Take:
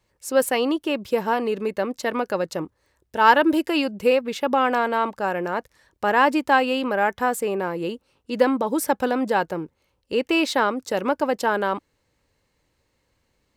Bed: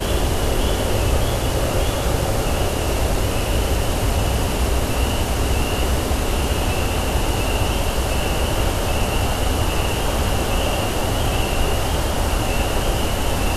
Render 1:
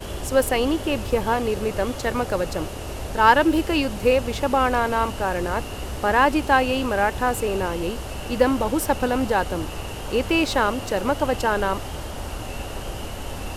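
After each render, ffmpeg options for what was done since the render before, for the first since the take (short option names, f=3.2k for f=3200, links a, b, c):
-filter_complex "[1:a]volume=-11.5dB[a];[0:a][a]amix=inputs=2:normalize=0"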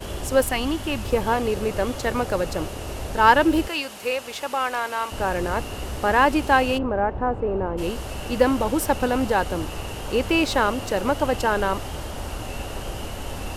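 -filter_complex "[0:a]asettb=1/sr,asplit=3[a][b][c];[a]atrim=end=0.434[d];[b]atrim=start=0.43:end=1.05,asetpts=PTS-STARTPTS,afade=t=in:d=0.004:c=qsin,afade=t=out:st=0.616:d=0.004:c=qsin,equalizer=f=470:w=2.2:g=-11.5[e];[c]atrim=start=1.046[f];[d][e]acrossfade=d=0.004:c1=hsin:c2=qsin[g];[g][f]acrossfade=d=0.004:c1=qsin:c2=hsin,asettb=1/sr,asplit=3[h][i][j];[h]atrim=end=3.684[k];[i]atrim=start=3.68:end=5.12,asetpts=PTS-STARTPTS,afade=t=in:d=0.004:c=qsin,afade=t=out:st=1.436:d=0.004:c=qsin,highpass=f=1.2k:p=1[l];[j]atrim=start=5.116[m];[k][l]acrossfade=d=0.004:c1=hsin:c2=qsin[n];[n][m]acrossfade=d=0.004:c1=qsin:c2=hsin,asplit=3[o][p][q];[o]afade=t=out:st=6.77:d=0.02[r];[p]lowpass=1k,afade=t=in:st=6.77:d=0.02,afade=t=out:st=7.77:d=0.02[s];[q]afade=t=in:st=7.77:d=0.02[t];[r][s][t]amix=inputs=3:normalize=0"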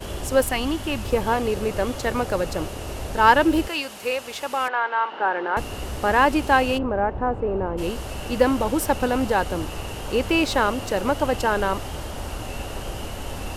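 -filter_complex "[0:a]asettb=1/sr,asplit=3[a][b][c];[a]atrim=end=4.684[d];[b]atrim=start=4.68:end=5.57,asetpts=PTS-STARTPTS,afade=t=in:d=0.004:c=qsin,afade=t=out:st=0.886:d=0.004:c=qsin,highpass=f=270:w=0.5412,highpass=f=270:w=1.3066,equalizer=f=270:t=q:w=4:g=-7,equalizer=f=610:t=q:w=4:g=-5,equalizer=f=860:t=q:w=4:g=7,equalizer=f=1.5k:t=q:w=4:g=6,equalizer=f=2.5k:t=q:w=4:g=-5,lowpass=f=3.2k:w=0.5412,lowpass=f=3.2k:w=1.3066[e];[c]atrim=start=5.566[f];[d][e]acrossfade=d=0.004:c1=hsin:c2=qsin[g];[g][f]acrossfade=d=0.004:c1=qsin:c2=hsin"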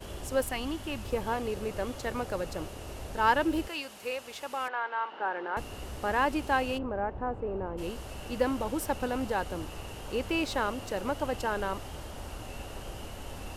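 -af "volume=-9.5dB"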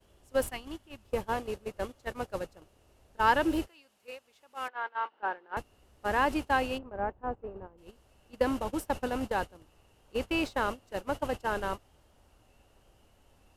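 -af "agate=range=-22dB:threshold=-31dB:ratio=16:detection=peak"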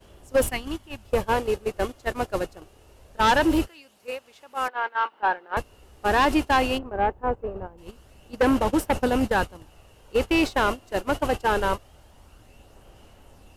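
-filter_complex "[0:a]aphaser=in_gain=1:out_gain=1:delay=2.9:decay=0.25:speed=0.23:type=sinusoidal,asplit=2[a][b];[b]aeval=exprs='0.282*sin(PI/2*3.55*val(0)/0.282)':c=same,volume=-8.5dB[c];[a][c]amix=inputs=2:normalize=0"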